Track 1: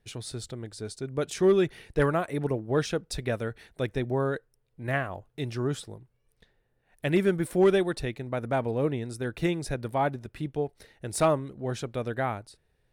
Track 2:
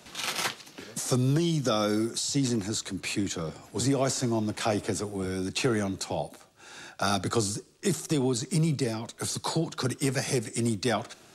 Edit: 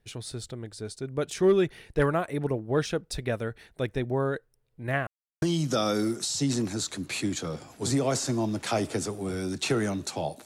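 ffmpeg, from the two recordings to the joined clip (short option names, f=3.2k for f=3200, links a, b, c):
-filter_complex "[0:a]apad=whole_dur=10.45,atrim=end=10.45,asplit=2[a][b];[a]atrim=end=5.07,asetpts=PTS-STARTPTS,afade=t=out:st=5.066:d=0.004:c=hsin[c];[b]atrim=start=5.07:end=5.42,asetpts=PTS-STARTPTS,volume=0[d];[1:a]atrim=start=1.36:end=6.39,asetpts=PTS-STARTPTS,afade=t=in:d=0.004:c=hsin[e];[c][d][e]concat=n=3:v=0:a=1"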